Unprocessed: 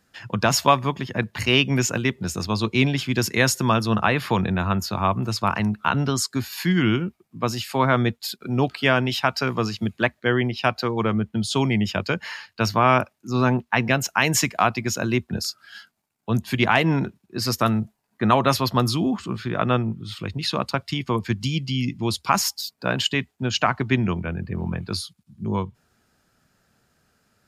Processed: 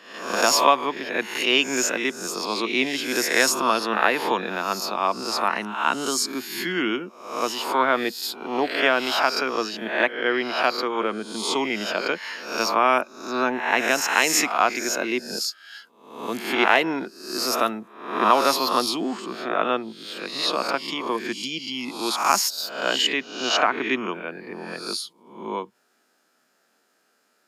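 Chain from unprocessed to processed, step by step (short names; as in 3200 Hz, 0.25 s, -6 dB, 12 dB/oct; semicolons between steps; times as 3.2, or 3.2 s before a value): spectral swells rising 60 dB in 0.65 s; HPF 280 Hz 24 dB/oct; gain -1.5 dB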